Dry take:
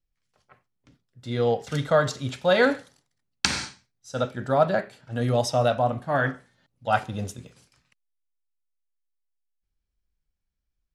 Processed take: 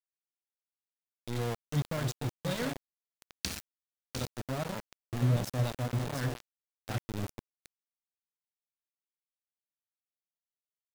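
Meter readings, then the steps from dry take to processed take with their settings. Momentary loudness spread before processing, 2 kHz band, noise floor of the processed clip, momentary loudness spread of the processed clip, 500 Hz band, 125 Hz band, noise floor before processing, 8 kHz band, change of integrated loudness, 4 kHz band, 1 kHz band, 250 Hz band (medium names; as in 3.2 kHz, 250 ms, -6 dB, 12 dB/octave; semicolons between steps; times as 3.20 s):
14 LU, -14.5 dB, under -85 dBFS, 13 LU, -16.0 dB, -2.5 dB, -80 dBFS, -7.5 dB, -10.0 dB, -10.0 dB, -16.0 dB, -7.0 dB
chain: amplifier tone stack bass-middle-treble 10-0-1; in parallel at -1.5 dB: level held to a coarse grid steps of 13 dB; on the sum: feedback delay 703 ms, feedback 23%, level -8 dB; small samples zeroed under -39.5 dBFS; trim +8 dB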